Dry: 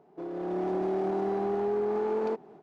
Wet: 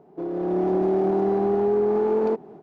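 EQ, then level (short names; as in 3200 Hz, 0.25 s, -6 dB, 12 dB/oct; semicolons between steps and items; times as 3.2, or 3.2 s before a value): tilt shelf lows +4.5 dB, about 810 Hz; +5.0 dB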